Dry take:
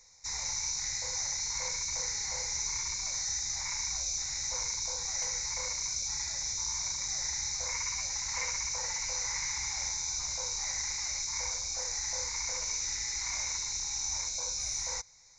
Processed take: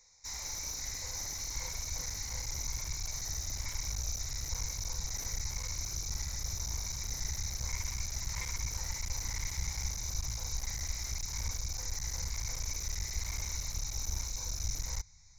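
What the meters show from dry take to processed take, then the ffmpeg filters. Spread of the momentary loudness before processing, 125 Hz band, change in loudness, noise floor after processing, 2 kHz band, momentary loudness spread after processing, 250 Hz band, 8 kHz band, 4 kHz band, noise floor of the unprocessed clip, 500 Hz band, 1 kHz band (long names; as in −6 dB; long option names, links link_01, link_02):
1 LU, +11.0 dB, −5.0 dB, −41 dBFS, −6.0 dB, 1 LU, can't be measured, −6.0 dB, −6.0 dB, −37 dBFS, −5.5 dB, −6.0 dB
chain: -af "asubboost=boost=12:cutoff=120,aeval=exprs='clip(val(0),-1,0.0178)':channel_layout=same,volume=-4dB"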